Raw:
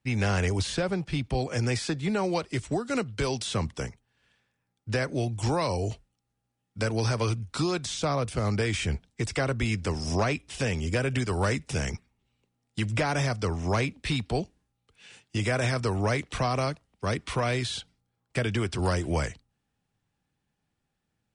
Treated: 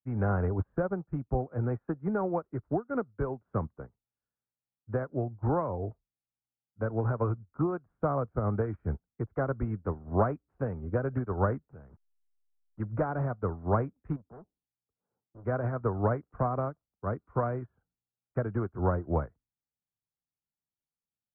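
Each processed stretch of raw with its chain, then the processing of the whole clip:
11.68–12.8 level-crossing sampler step -39.5 dBFS + compressor 2.5:1, threshold -33 dBFS + notch 2100 Hz, Q 25
14.16–15.45 LPF 1100 Hz 24 dB/oct + low shelf 70 Hz -8 dB + hard clip -32.5 dBFS
whole clip: de-esser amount 85%; elliptic low-pass 1400 Hz, stop band 80 dB; upward expander 2.5:1, over -41 dBFS; gain +3 dB

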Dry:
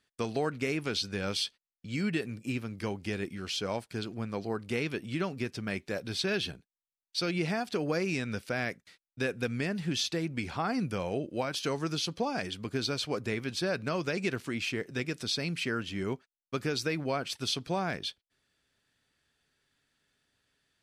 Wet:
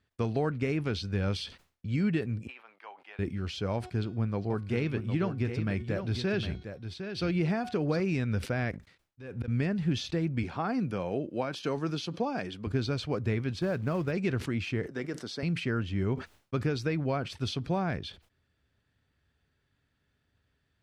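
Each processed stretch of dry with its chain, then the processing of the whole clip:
2.47–3.19 ladder high-pass 700 Hz, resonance 45% + resonant high shelf 4200 Hz -8.5 dB, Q 1.5
3.74–8 de-hum 366.1 Hz, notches 21 + echo 0.758 s -8.5 dB
8.71–9.48 sample leveller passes 1 + compressor 3:1, threshold -32 dBFS + auto swell 0.277 s
10.43–12.67 HPF 190 Hz + notch 2000 Hz, Q 26
13.59–14.12 high shelf 2500 Hz -8 dB + short-mantissa float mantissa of 2-bit
14.86–15.43 HPF 280 Hz + bell 3600 Hz -5 dB 0.53 oct + notch 2500 Hz, Q 5.6
whole clip: LPF 2000 Hz 6 dB/oct; bell 75 Hz +13.5 dB 1.8 oct; sustainer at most 150 dB/s

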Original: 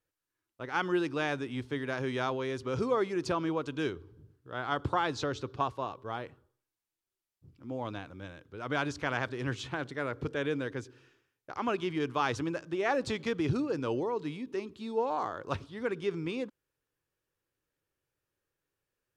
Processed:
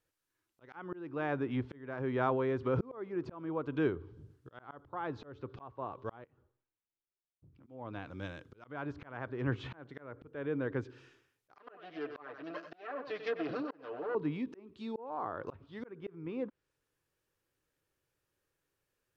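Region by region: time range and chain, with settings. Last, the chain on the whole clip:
6.24–7.67 compressor 12:1, threshold -59 dBFS + air absorption 350 m + three-band expander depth 40%
11.55–14.15 minimum comb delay 6.7 ms + speaker cabinet 480–4400 Hz, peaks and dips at 860 Hz -9 dB, 2200 Hz -10 dB, 3400 Hz -8 dB + echo 95 ms -11.5 dB
whole clip: treble ducked by the level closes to 1500 Hz, closed at -31.5 dBFS; auto swell 0.524 s; gain +2.5 dB

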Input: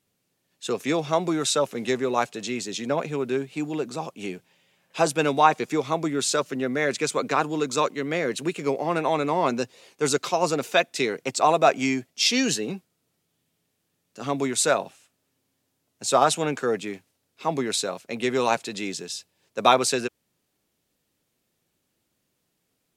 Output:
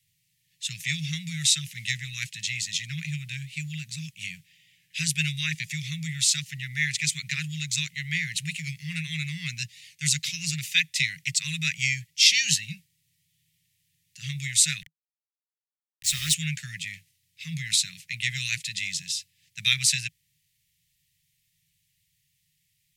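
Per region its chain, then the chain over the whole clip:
14.82–16.34 HPF 71 Hz + sample gate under -29.5 dBFS + mismatched tape noise reduction decoder only
whole clip: Chebyshev band-stop 160–1900 Hz, order 5; bell 1000 Hz +7.5 dB 0.37 oct; gain +5 dB

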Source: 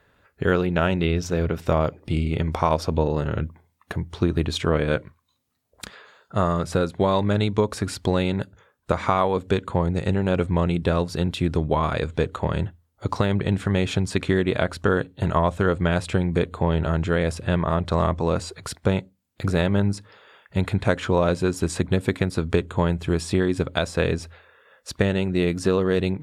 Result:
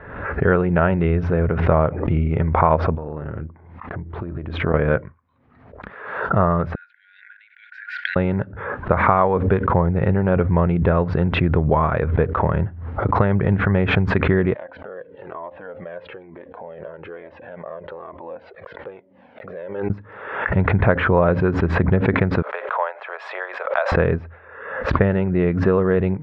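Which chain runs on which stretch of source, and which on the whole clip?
2.95–4.74 AM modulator 250 Hz, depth 30% + compressor 10:1, threshold -29 dBFS
6.75–8.16 tilt -2 dB/oct + compressor, threshold -23 dBFS + brick-wall FIR band-pass 1400–9400 Hz
14.54–19.9 compressor 4:1, threshold -30 dBFS + speaker cabinet 400–5600 Hz, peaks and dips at 530 Hz +8 dB, 1300 Hz -7 dB, 3100 Hz +4 dB + cascading flanger falling 1.1 Hz
22.42–23.92 steep high-pass 560 Hz 48 dB/oct + high shelf 9400 Hz +8.5 dB
whole clip: LPF 1900 Hz 24 dB/oct; dynamic EQ 290 Hz, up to -5 dB, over -36 dBFS, Q 2.5; backwards sustainer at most 58 dB/s; gain +4.5 dB

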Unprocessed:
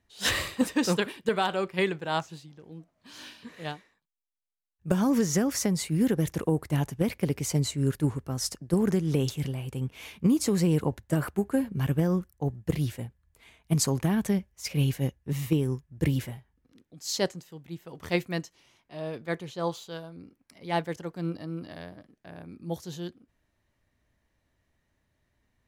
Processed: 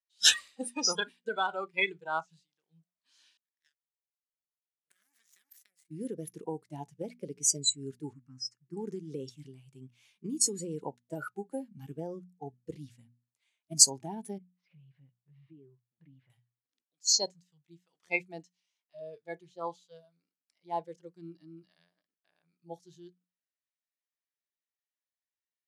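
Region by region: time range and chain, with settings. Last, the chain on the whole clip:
3.37–5.91 EQ curve 100 Hz 0 dB, 370 Hz -5 dB, 590 Hz -26 dB, 1000 Hz -24 dB, 1700 Hz +14 dB, 3800 Hz -10 dB, 6800 Hz +1 dB, 12000 Hz +14 dB + compressor 3:1, threshold -29 dBFS + power-law curve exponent 3
8.13–8.77 LPF 5600 Hz + fixed phaser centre 1500 Hz, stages 4
14.38–16.3 compressor, threshold -36 dBFS + Gaussian blur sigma 3.2 samples
whole clip: weighting filter ITU-R 468; spectral noise reduction 27 dB; notches 60/120/180/240 Hz; gain -2 dB

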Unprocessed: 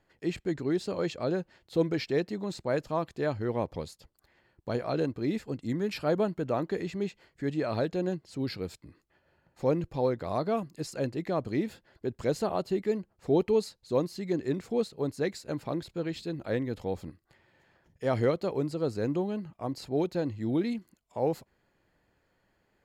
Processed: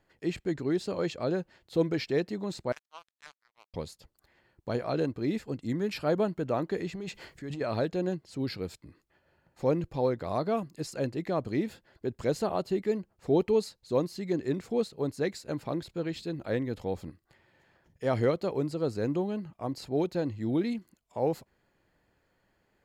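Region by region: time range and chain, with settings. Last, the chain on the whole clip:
2.72–3.74 inverse Chebyshev high-pass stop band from 310 Hz, stop band 60 dB + power-law curve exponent 3
6.95–7.61 bell 9800 Hz +3 dB 2.9 oct + transient shaper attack -5 dB, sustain +12 dB + compressor 3:1, threshold -36 dBFS
whole clip: dry

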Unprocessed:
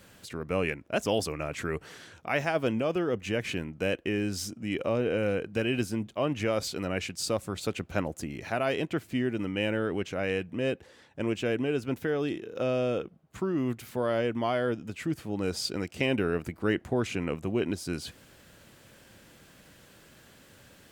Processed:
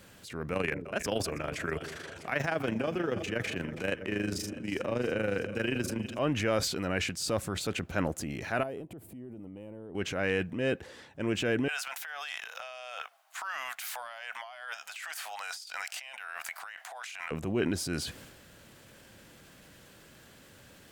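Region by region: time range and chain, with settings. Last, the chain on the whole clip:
0.53–6.19 AM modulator 25 Hz, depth 70% + split-band echo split 520 Hz, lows 0.181 s, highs 0.324 s, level -16 dB + three-band squash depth 40%
8.63–9.95 band shelf 2900 Hz -15 dB 2.8 oct + compressor 16:1, threshold -40 dBFS
11.68–17.31 elliptic high-pass 700 Hz, stop band 50 dB + high shelf 2500 Hz +7 dB + negative-ratio compressor -43 dBFS
whole clip: dynamic EQ 1600 Hz, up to +6 dB, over -50 dBFS, Q 2.9; transient shaper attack -4 dB, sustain +6 dB

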